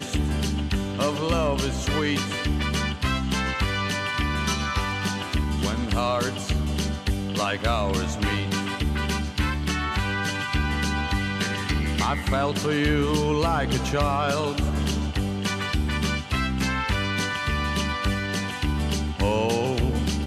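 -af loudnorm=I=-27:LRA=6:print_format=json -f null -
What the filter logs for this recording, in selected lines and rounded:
"input_i" : "-25.2",
"input_tp" : "-11.3",
"input_lra" : "1.6",
"input_thresh" : "-35.2",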